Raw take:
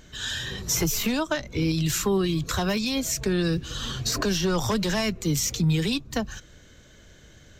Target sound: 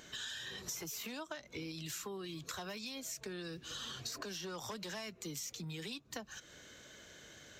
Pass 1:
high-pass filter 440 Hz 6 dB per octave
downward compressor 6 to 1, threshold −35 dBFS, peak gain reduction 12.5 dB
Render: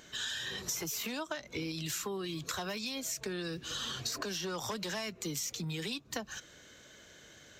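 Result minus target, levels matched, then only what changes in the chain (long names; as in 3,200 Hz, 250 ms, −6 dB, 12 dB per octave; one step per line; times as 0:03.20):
downward compressor: peak gain reduction −6 dB
change: downward compressor 6 to 1, threshold −42.5 dBFS, peak gain reduction 18.5 dB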